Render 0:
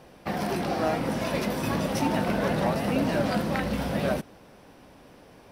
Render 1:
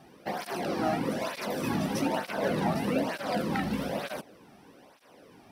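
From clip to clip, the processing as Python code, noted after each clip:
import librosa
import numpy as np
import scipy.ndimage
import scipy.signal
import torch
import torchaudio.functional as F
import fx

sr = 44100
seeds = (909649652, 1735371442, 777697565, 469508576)

y = fx.flanger_cancel(x, sr, hz=1.1, depth_ms=2.1)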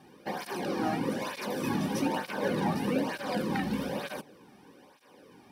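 y = fx.hum_notches(x, sr, base_hz=50, count=3)
y = fx.notch_comb(y, sr, f0_hz=670.0)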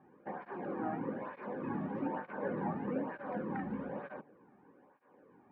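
y = scipy.signal.sosfilt(scipy.signal.butter(4, 1700.0, 'lowpass', fs=sr, output='sos'), x)
y = fx.low_shelf(y, sr, hz=94.0, db=-7.0)
y = F.gain(torch.from_numpy(y), -6.5).numpy()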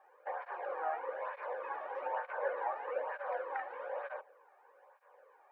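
y = scipy.signal.sosfilt(scipy.signal.ellip(4, 1.0, 60, 520.0, 'highpass', fs=sr, output='sos'), x)
y = F.gain(torch.from_numpy(y), 4.5).numpy()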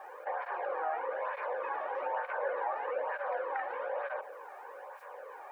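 y = fx.env_flatten(x, sr, amount_pct=50)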